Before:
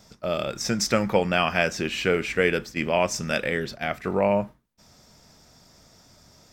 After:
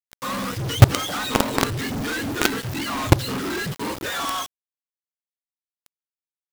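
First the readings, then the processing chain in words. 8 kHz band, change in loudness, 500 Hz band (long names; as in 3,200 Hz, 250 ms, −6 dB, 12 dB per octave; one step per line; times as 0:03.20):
+2.5 dB, +1.5 dB, −5.5 dB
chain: frequency axis turned over on the octave scale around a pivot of 820 Hz
log-companded quantiser 2 bits
level −1 dB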